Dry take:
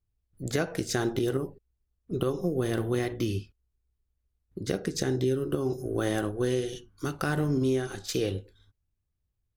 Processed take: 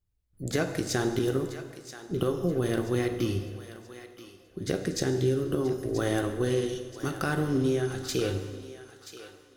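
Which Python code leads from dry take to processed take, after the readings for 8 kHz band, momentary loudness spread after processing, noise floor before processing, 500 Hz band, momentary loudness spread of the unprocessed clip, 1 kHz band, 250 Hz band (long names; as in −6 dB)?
+1.0 dB, 18 LU, −80 dBFS, +1.0 dB, 9 LU, +1.0 dB, +0.5 dB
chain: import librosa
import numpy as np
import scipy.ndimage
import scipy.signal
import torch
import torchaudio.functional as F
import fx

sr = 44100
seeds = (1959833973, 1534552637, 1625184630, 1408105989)

p1 = x + fx.echo_thinned(x, sr, ms=980, feedback_pct=39, hz=710.0, wet_db=-12, dry=0)
y = fx.rev_plate(p1, sr, seeds[0], rt60_s=1.7, hf_ratio=0.9, predelay_ms=0, drr_db=7.5)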